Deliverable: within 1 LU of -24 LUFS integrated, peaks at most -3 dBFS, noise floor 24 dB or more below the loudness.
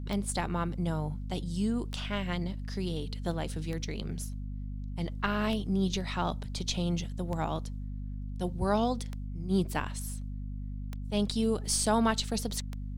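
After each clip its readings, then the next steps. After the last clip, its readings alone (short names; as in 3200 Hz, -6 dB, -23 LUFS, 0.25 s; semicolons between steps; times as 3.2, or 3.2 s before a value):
clicks 8; hum 50 Hz; harmonics up to 250 Hz; hum level -35 dBFS; loudness -32.5 LUFS; peak -14.0 dBFS; loudness target -24.0 LUFS
-> de-click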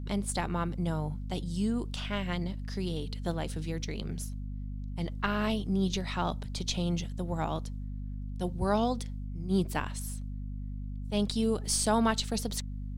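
clicks 0; hum 50 Hz; harmonics up to 250 Hz; hum level -35 dBFS
-> de-hum 50 Hz, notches 5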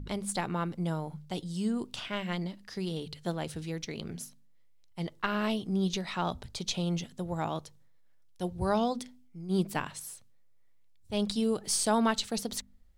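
hum none; loudness -33.0 LUFS; peak -13.5 dBFS; loudness target -24.0 LUFS
-> gain +9 dB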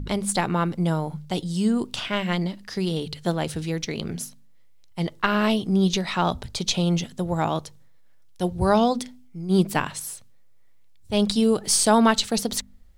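loudness -24.0 LUFS; peak -4.5 dBFS; noise floor -49 dBFS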